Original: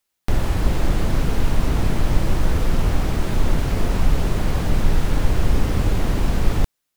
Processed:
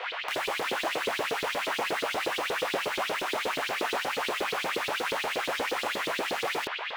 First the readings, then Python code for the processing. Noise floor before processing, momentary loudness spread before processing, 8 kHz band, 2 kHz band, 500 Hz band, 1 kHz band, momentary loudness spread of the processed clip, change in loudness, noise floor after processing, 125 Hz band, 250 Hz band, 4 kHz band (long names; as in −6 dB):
−77 dBFS, 2 LU, −3.0 dB, +4.5 dB, −2.0 dB, +1.0 dB, 1 LU, −6.5 dB, −35 dBFS, −32.0 dB, −15.0 dB, +3.5 dB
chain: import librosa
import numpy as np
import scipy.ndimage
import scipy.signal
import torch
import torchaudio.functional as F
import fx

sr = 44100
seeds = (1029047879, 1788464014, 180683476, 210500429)

y = fx.dmg_noise_band(x, sr, seeds[0], low_hz=400.0, high_hz=3100.0, level_db=-35.0)
y = fx.doubler(y, sr, ms=26.0, db=-2)
y = fx.filter_lfo_highpass(y, sr, shape='saw_up', hz=8.4, low_hz=360.0, high_hz=4300.0, q=3.3)
y = F.gain(torch.from_numpy(y), -6.0).numpy()